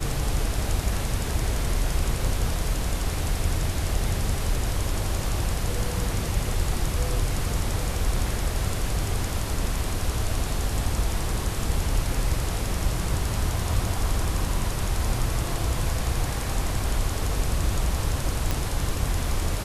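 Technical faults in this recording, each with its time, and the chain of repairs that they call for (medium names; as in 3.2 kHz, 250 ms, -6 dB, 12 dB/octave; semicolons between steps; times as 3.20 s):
18.51 s: pop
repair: de-click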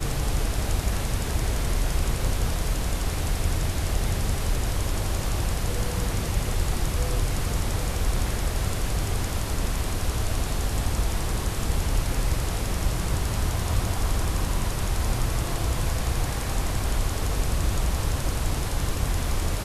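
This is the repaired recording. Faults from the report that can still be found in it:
nothing left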